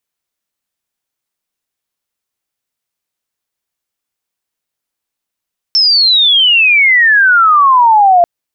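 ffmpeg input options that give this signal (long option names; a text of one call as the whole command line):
ffmpeg -f lavfi -i "aevalsrc='pow(10,(-6+2.5*t/2.49)/20)*sin(2*PI*5400*2.49/log(680/5400)*(exp(log(680/5400)*t/2.49)-1))':duration=2.49:sample_rate=44100" out.wav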